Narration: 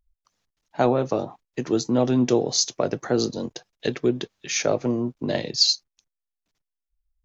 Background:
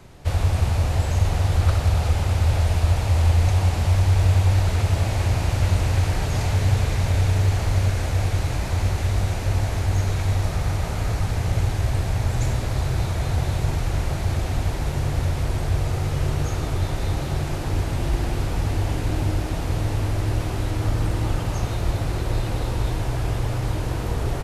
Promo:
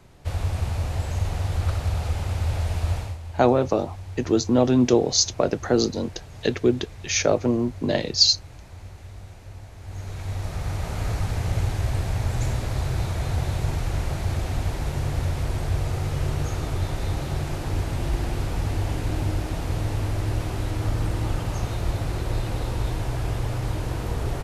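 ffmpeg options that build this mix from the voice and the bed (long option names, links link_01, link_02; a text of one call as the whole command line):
ffmpeg -i stem1.wav -i stem2.wav -filter_complex "[0:a]adelay=2600,volume=2dB[link_01];[1:a]volume=11dB,afade=type=out:start_time=2.95:duration=0.23:silence=0.211349,afade=type=in:start_time=9.78:duration=1.28:silence=0.149624[link_02];[link_01][link_02]amix=inputs=2:normalize=0" out.wav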